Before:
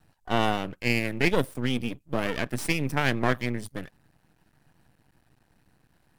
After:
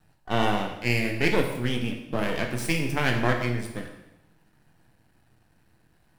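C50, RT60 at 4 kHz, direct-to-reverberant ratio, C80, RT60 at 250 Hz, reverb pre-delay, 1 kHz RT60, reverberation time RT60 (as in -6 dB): 6.0 dB, 0.90 s, 2.5 dB, 8.5 dB, 0.95 s, 5 ms, 0.95 s, 0.95 s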